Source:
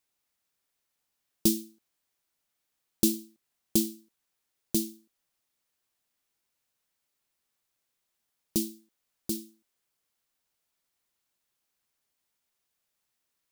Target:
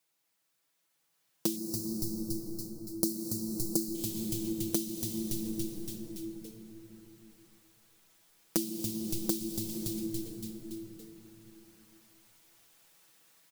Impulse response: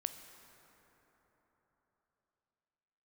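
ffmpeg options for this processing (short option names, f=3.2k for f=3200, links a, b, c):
-filter_complex "[0:a]highpass=f=120:w=0.5412,highpass=f=120:w=1.3066,asplit=7[a][b][c][d][e][f][g];[b]adelay=283,afreqshift=-110,volume=-12dB[h];[c]adelay=566,afreqshift=-220,volume=-17.4dB[i];[d]adelay=849,afreqshift=-330,volume=-22.7dB[j];[e]adelay=1132,afreqshift=-440,volume=-28.1dB[k];[f]adelay=1415,afreqshift=-550,volume=-33.4dB[l];[g]adelay=1698,afreqshift=-660,volume=-38.8dB[m];[a][h][i][j][k][l][m]amix=inputs=7:normalize=0[n];[1:a]atrim=start_sample=2205[o];[n][o]afir=irnorm=-1:irlink=0,dynaudnorm=f=190:g=17:m=14.5dB,asettb=1/sr,asplit=3[p][q][r];[p]atrim=end=1.564[s];[q]atrim=start=1.56:end=3.95,asetpts=PTS-STARTPTS,afade=t=in:d=0.004:c=qsin,afade=t=out:st=2.386:d=0.004:c=qsin,asuperstop=centerf=2500:order=12:qfactor=0.93[t];[r]atrim=start=3.946[u];[s][t]acrossfade=d=0.004:c1=hsin:c2=qsin[v];[v][u]acrossfade=d=0.004:c1=qsin:c2=hsin,acompressor=threshold=-34dB:ratio=6,aecho=1:1:6.1:0.65,volume=2.5dB"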